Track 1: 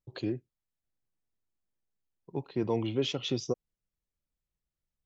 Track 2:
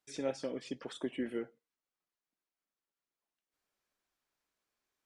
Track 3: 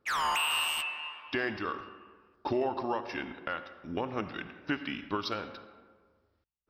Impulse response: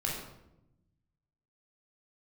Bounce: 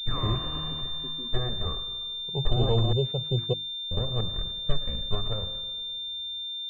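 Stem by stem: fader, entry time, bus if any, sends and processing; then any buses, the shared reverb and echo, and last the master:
+1.0 dB, 0.00 s, no send, static phaser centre 680 Hz, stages 4
-15.0 dB, 0.00 s, no send, none
-2.5 dB, 0.00 s, muted 2.93–3.91 s, no send, comb filter that takes the minimum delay 1.7 ms; hum notches 50/100 Hz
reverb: none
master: tilt EQ -4.5 dB/octave; hum notches 50/100/150/200/250/300/350 Hz; class-D stage that switches slowly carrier 3.6 kHz

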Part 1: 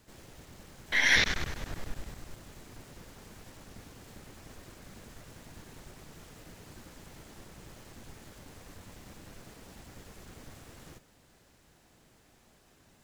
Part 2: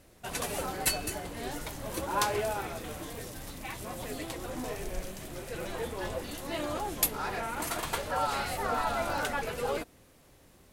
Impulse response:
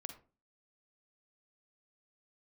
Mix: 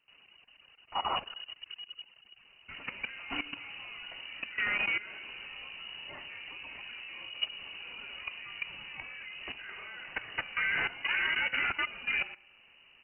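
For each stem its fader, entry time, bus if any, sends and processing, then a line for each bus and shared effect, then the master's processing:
-5.0 dB, 0.00 s, send -12.5 dB, echo send -20.5 dB, reverb removal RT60 1 s
+2.0 dB, 2.45 s, no send, echo send -12.5 dB, none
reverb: on, RT60 0.35 s, pre-delay 40 ms
echo: feedback delay 69 ms, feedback 43%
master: level held to a coarse grid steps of 15 dB; frequency inversion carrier 2.9 kHz

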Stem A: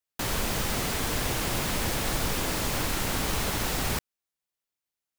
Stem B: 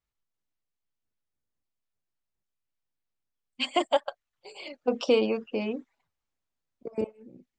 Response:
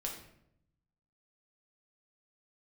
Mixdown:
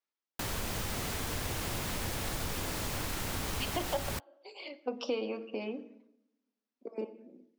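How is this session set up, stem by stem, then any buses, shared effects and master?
-3.5 dB, 0.20 s, no send, peaking EQ 91 Hz +6.5 dB 0.31 oct; bit crusher 7-bit
-5.0 dB, 0.00 s, send -8 dB, elliptic band-pass 240–5800 Hz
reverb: on, RT60 0.75 s, pre-delay 5 ms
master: compression 2:1, threshold -35 dBFS, peak gain reduction 8.5 dB

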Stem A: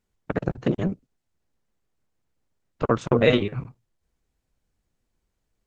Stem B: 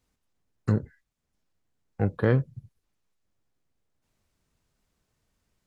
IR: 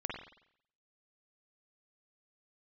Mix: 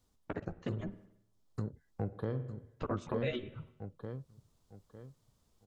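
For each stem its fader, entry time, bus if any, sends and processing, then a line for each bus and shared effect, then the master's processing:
-5.0 dB, 0.00 s, send -15 dB, no echo send, reverb removal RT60 1.3 s; chorus voices 4, 0.41 Hz, delay 11 ms, depth 2.1 ms
+0.5 dB, 0.00 s, send -16.5 dB, echo send -7 dB, high-order bell 2 kHz -8 dB 1.1 oct; auto duck -17 dB, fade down 1.00 s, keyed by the first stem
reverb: on, RT60 0.65 s, pre-delay 46 ms
echo: feedback delay 903 ms, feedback 26%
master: compression 2:1, threshold -39 dBFS, peak gain reduction 11 dB

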